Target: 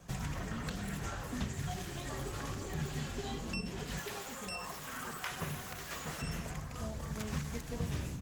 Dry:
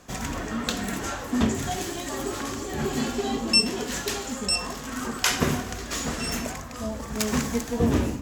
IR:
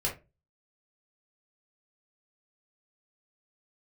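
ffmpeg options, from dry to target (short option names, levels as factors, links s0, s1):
-filter_complex "[0:a]asettb=1/sr,asplit=3[s0][s1][s2];[s0]atrim=end=3.984[s3];[s1]atrim=start=3.98:end=6.22,asetpts=PTS-STARTPTS,afade=t=in:d=0.004:c=qsin,afade=t=out:st=2.236:d=0.004:c=qsin,aemphasis=mode=production:type=riaa[s4];[s2]atrim=start=6.216[s5];[s3][s4]acrossfade=d=0.004:c1=hsin:c2=qsin[s6];[s6][s5]acrossfade=d=0.004:c1=qsin:c2=hsin,acrossover=split=3200[s7][s8];[s8]acompressor=threshold=0.0398:ratio=4:attack=1:release=60[s9];[s7][s9]amix=inputs=2:normalize=0,lowshelf=f=200:t=q:w=3:g=6,acrossover=split=120|1500|3700[s10][s11][s12][s13];[s10]acompressor=threshold=0.0178:ratio=4[s14];[s11]acompressor=threshold=0.02:ratio=4[s15];[s12]acompressor=threshold=0.01:ratio=4[s16];[s13]acompressor=threshold=0.00794:ratio=4[s17];[s14][s15][s16][s17]amix=inputs=4:normalize=0,asplit=2[s18][s19];[s19]adelay=242,lowpass=f=4100:p=1,volume=0.0668,asplit=2[s20][s21];[s21]adelay=242,lowpass=f=4100:p=1,volume=0.19[s22];[s18][s20][s22]amix=inputs=3:normalize=0,volume=0.531" -ar 48000 -c:a libopus -b:a 20k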